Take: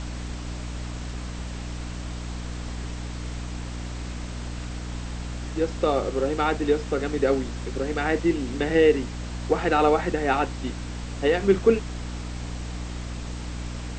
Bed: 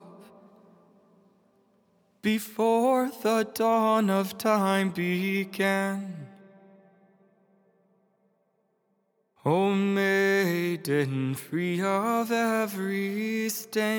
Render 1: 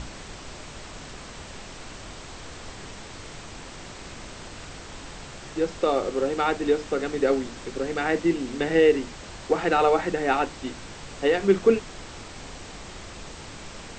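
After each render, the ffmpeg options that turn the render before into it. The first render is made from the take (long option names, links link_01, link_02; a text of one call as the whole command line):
ffmpeg -i in.wav -af "bandreject=frequency=60:width_type=h:width=6,bandreject=frequency=120:width_type=h:width=6,bandreject=frequency=180:width_type=h:width=6,bandreject=frequency=240:width_type=h:width=6,bandreject=frequency=300:width_type=h:width=6" out.wav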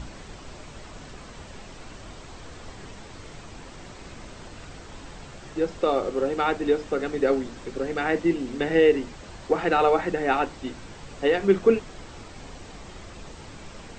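ffmpeg -i in.wav -af "afftdn=noise_reduction=6:noise_floor=-42" out.wav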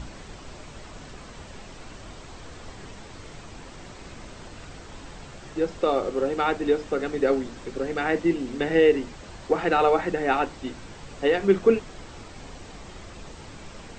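ffmpeg -i in.wav -af anull out.wav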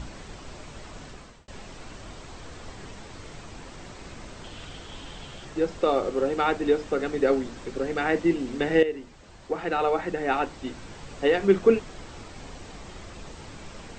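ffmpeg -i in.wav -filter_complex "[0:a]asettb=1/sr,asplit=3[link_01][link_02][link_03];[link_01]atrim=end=4.444[link_04];[link_02]atrim=start=4.44:end=5.45,asetpts=PTS-STARTPTS,afade=type=in:duration=0.004:curve=qsin,afade=type=out:start_time=1.006:duration=0.004:curve=qsin,equalizer=frequency=3200:width=3.9:gain=11[link_05];[link_03]atrim=start=5.446[link_06];[link_04][link_05]acrossfade=duration=0.004:curve1=hsin:curve2=qsin[link_07];[link_07][link_06]acrossfade=duration=0.004:curve1=qsin:curve2=hsin,asplit=3[link_08][link_09][link_10];[link_08]atrim=end=1.48,asetpts=PTS-STARTPTS,afade=type=out:start_time=0.95:duration=0.53:curve=qsin[link_11];[link_09]atrim=start=1.48:end=8.83,asetpts=PTS-STARTPTS,afade=type=in:duration=0.004:curve=hsin,afade=type=out:start_time=7.346:duration=0.004:curve=hsin:silence=0.237137[link_12];[link_10]atrim=start=8.83,asetpts=PTS-STARTPTS,afade=type=in:duration=2.11:silence=0.237137[link_13];[link_11][link_12][link_13]concat=n=3:v=0:a=1" out.wav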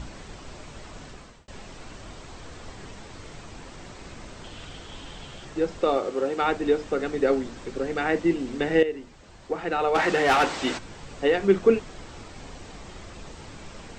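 ffmpeg -i in.wav -filter_complex "[0:a]asettb=1/sr,asplit=3[link_01][link_02][link_03];[link_01]atrim=end=5.974[link_04];[link_02]atrim=start=5.97:end=6.42,asetpts=PTS-STARTPTS,afade=type=in:duration=0.004:curve=qsin,afade=type=out:start_time=0.446:duration=0.004:curve=qsin,highpass=frequency=220:poles=1[link_05];[link_03]atrim=start=6.416[link_06];[link_04][link_05]acrossfade=duration=0.004:curve1=hsin:curve2=qsin[link_07];[link_07][link_06]acrossfade=duration=0.004:curve1=qsin:curve2=hsin,asplit=3[link_08][link_09][link_10];[link_08]afade=type=out:start_time=9.94:duration=0.02[link_11];[link_09]asplit=2[link_12][link_13];[link_13]highpass=frequency=720:poles=1,volume=22dB,asoftclip=type=tanh:threshold=-13dB[link_14];[link_12][link_14]amix=inputs=2:normalize=0,lowpass=frequency=7300:poles=1,volume=-6dB,afade=type=in:start_time=9.94:duration=0.02,afade=type=out:start_time=10.77:duration=0.02[link_15];[link_10]afade=type=in:start_time=10.77:duration=0.02[link_16];[link_11][link_15][link_16]amix=inputs=3:normalize=0" out.wav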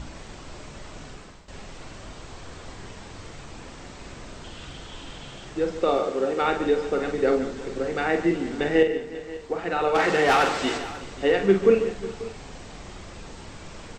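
ffmpeg -i in.wav -filter_complex "[0:a]asplit=2[link_01][link_02];[link_02]adelay=46,volume=-7dB[link_03];[link_01][link_03]amix=inputs=2:normalize=0,asplit=2[link_04][link_05];[link_05]aecho=0:1:145|365|539:0.251|0.119|0.133[link_06];[link_04][link_06]amix=inputs=2:normalize=0" out.wav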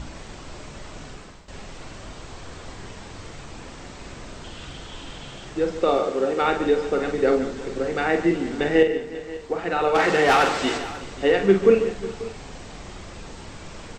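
ffmpeg -i in.wav -af "volume=2dB" out.wav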